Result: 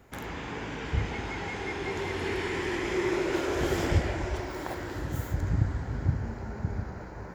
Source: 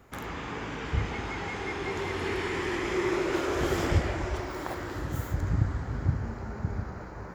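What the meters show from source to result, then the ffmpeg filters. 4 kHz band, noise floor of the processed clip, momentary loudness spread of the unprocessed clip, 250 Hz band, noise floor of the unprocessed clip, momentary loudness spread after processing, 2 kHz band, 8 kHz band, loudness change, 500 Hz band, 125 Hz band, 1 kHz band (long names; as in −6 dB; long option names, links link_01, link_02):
0.0 dB, −41 dBFS, 8 LU, 0.0 dB, −41 dBFS, 8 LU, −0.5 dB, 0.0 dB, 0.0 dB, 0.0 dB, 0.0 dB, −1.5 dB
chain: -af "equalizer=frequency=1200:width=6.3:gain=-7"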